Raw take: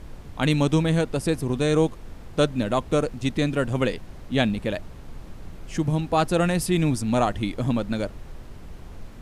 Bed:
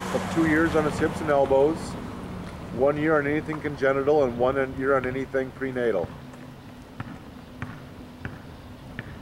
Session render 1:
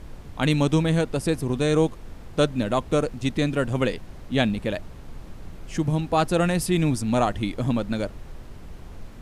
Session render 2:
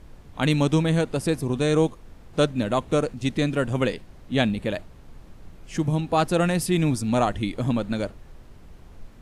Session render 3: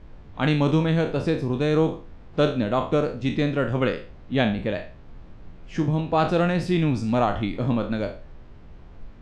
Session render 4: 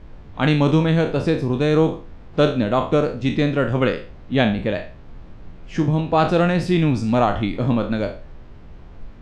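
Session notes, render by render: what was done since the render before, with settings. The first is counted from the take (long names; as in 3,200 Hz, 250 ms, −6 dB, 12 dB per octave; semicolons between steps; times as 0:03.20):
no processing that can be heard
noise reduction from a noise print 6 dB
peak hold with a decay on every bin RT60 0.39 s; high-frequency loss of the air 170 metres
level +4 dB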